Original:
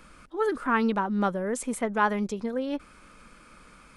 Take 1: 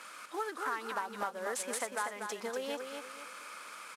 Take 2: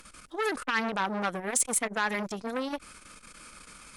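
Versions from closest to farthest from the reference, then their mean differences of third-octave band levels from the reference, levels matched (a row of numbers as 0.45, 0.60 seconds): 2, 1; 6.5, 13.0 decibels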